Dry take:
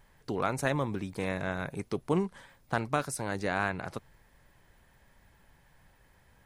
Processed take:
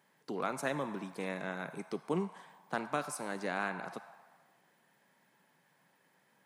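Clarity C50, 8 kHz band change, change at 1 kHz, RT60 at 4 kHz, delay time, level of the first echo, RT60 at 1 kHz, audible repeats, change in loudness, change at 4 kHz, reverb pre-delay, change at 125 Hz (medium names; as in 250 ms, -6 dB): 10.5 dB, -5.0 dB, -4.0 dB, 1.2 s, no echo, no echo, 1.5 s, no echo, -5.5 dB, -5.0 dB, 35 ms, -10.5 dB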